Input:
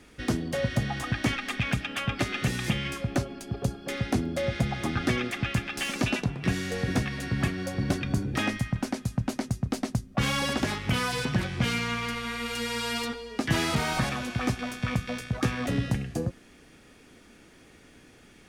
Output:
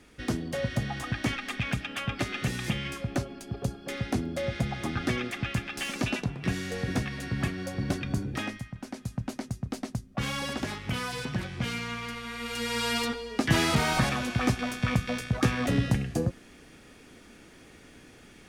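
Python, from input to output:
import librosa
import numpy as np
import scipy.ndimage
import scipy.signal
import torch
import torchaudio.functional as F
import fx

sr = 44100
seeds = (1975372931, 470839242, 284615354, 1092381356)

y = fx.gain(x, sr, db=fx.line((8.27, -2.5), (8.75, -12.0), (9.06, -5.0), (12.28, -5.0), (12.83, 2.0)))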